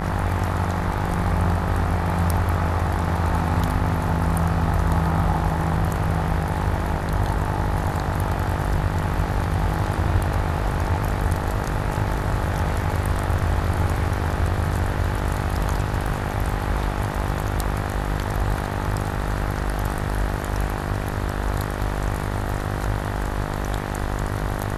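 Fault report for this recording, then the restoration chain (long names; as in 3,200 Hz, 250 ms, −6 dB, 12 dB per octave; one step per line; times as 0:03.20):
mains buzz 50 Hz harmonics 39 −27 dBFS
0:16.07–0:16.08: drop-out 5.1 ms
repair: hum removal 50 Hz, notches 39
repair the gap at 0:16.07, 5.1 ms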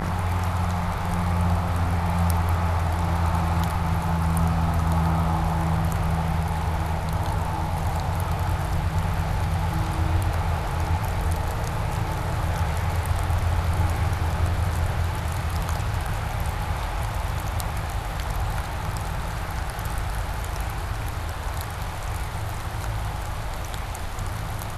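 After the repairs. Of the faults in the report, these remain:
none of them is left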